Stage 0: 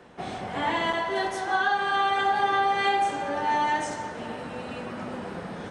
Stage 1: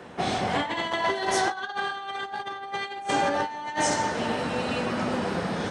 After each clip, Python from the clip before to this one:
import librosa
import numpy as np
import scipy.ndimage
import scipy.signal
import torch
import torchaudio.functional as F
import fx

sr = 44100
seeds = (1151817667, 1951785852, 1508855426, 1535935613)

y = fx.over_compress(x, sr, threshold_db=-30.0, ratio=-0.5)
y = scipy.signal.sosfilt(scipy.signal.butter(2, 50.0, 'highpass', fs=sr, output='sos'), y)
y = fx.dynamic_eq(y, sr, hz=5100.0, q=1.0, threshold_db=-52.0, ratio=4.0, max_db=6)
y = y * librosa.db_to_amplitude(3.0)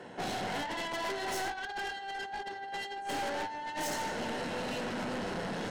y = fx.cheby_harmonics(x, sr, harmonics=(8,), levels_db=(-17,), full_scale_db=-12.0)
y = fx.notch_comb(y, sr, f0_hz=1200.0)
y = 10.0 ** (-29.0 / 20.0) * np.tanh(y / 10.0 ** (-29.0 / 20.0))
y = y * librosa.db_to_amplitude(-3.0)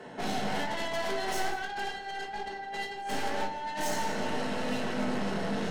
y = x + 10.0 ** (-16.0 / 20.0) * np.pad(x, (int(174 * sr / 1000.0), 0))[:len(x)]
y = fx.room_shoebox(y, sr, seeds[0], volume_m3=330.0, walls='furnished', distance_m=1.5)